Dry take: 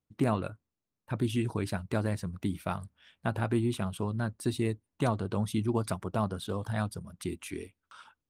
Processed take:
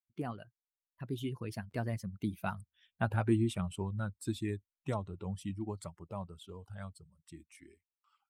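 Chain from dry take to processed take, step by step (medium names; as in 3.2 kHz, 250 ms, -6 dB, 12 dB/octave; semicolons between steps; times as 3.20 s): expander on every frequency bin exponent 1.5; Doppler pass-by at 3.02 s, 33 m/s, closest 28 m; buffer glitch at 1.70 s, samples 512, times 2; trim +2 dB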